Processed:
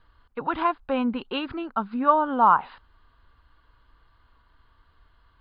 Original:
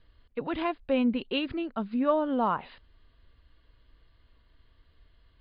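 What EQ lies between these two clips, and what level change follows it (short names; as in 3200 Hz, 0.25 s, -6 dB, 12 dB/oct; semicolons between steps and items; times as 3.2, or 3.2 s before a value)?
band shelf 1100 Hz +11.5 dB 1.2 oct; 0.0 dB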